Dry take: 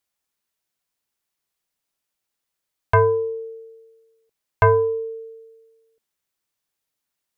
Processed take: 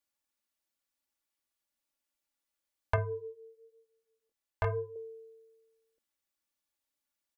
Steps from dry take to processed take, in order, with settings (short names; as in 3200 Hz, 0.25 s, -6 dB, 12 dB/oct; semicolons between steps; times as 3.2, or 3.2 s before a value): comb 3.5 ms, depth 76%; 2.96–4.96 chorus 1 Hz, delay 18.5 ms, depth 5.4 ms; gain -8.5 dB